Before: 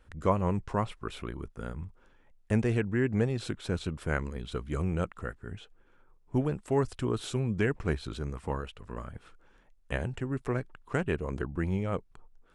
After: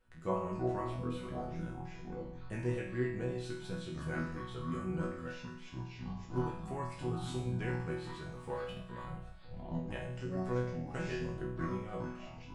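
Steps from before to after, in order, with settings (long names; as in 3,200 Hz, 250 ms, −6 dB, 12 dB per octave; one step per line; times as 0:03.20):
0:08.21–0:09.15: leveller curve on the samples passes 1
delay with pitch and tempo change per echo 199 ms, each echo −7 semitones, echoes 3
resonators tuned to a chord B2 sus4, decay 0.64 s
level +9.5 dB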